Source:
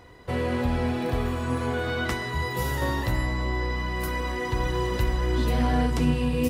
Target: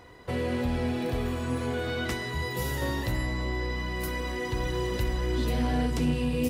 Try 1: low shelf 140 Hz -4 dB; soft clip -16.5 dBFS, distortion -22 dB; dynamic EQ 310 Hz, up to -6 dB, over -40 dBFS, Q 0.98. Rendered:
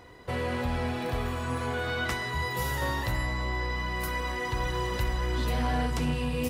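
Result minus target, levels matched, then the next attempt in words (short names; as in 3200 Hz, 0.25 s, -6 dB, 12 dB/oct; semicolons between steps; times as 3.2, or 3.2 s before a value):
1000 Hz band +4.5 dB
low shelf 140 Hz -4 dB; soft clip -16.5 dBFS, distortion -22 dB; dynamic EQ 1100 Hz, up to -6 dB, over -40 dBFS, Q 0.98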